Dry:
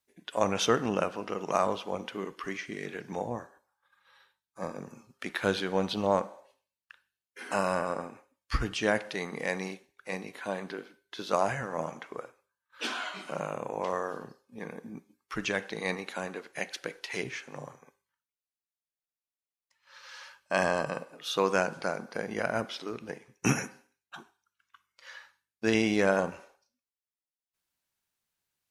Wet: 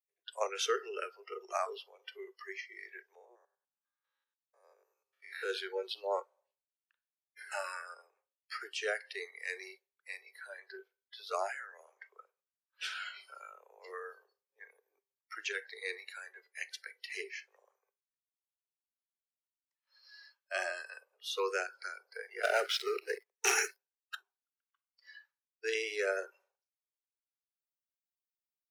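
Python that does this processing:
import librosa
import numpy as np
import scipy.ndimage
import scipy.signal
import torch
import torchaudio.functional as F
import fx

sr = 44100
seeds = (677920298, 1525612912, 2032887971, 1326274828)

y = fx.spec_steps(x, sr, hold_ms=100, at=(3.15, 5.48), fade=0.02)
y = fx.leveller(y, sr, passes=3, at=(22.43, 24.15))
y = fx.noise_reduce_blind(y, sr, reduce_db=21)
y = scipy.signal.sosfilt(scipy.signal.butter(16, 380.0, 'highpass', fs=sr, output='sos'), y)
y = fx.dynamic_eq(y, sr, hz=760.0, q=1.2, threshold_db=-40.0, ratio=4.0, max_db=-3)
y = y * 10.0 ** (-4.5 / 20.0)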